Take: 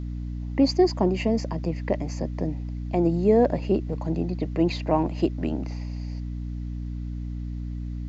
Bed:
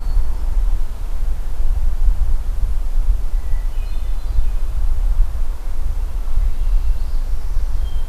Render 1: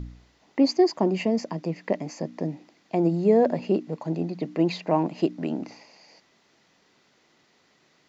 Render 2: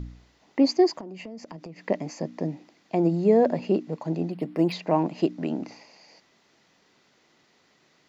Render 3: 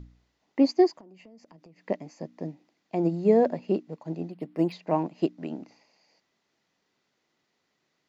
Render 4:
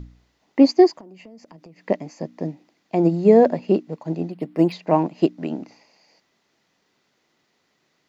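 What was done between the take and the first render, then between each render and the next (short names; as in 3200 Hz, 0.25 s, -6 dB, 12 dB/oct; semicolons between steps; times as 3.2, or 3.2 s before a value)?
de-hum 60 Hz, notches 5
1–1.83 compressor 10:1, threshold -36 dBFS; 4.31–4.72 decimation joined by straight lines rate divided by 6×
upward expander 1.5:1, over -40 dBFS
gain +7.5 dB; limiter -3 dBFS, peak gain reduction 1 dB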